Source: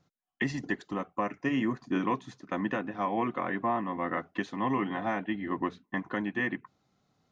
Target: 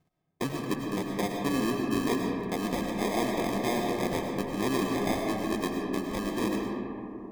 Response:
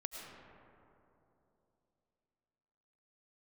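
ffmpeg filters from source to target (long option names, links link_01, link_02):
-filter_complex "[0:a]acrusher=samples=31:mix=1:aa=0.000001[link_01];[1:a]atrim=start_sample=2205[link_02];[link_01][link_02]afir=irnorm=-1:irlink=0,volume=3dB"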